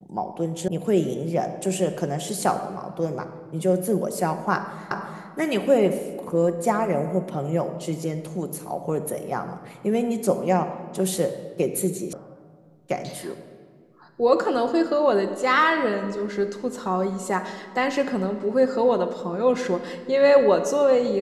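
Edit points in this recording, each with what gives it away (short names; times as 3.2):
0.68 sound cut off
4.91 repeat of the last 0.36 s
12.13 sound cut off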